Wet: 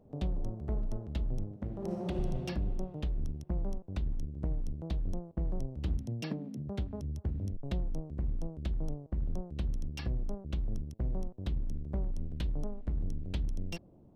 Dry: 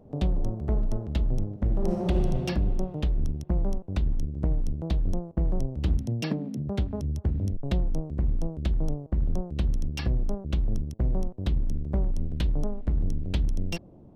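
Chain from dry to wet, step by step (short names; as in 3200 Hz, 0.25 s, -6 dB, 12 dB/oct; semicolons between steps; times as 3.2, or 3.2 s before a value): 1.51–2.19 HPF 86 Hz 12 dB/oct; gain -8 dB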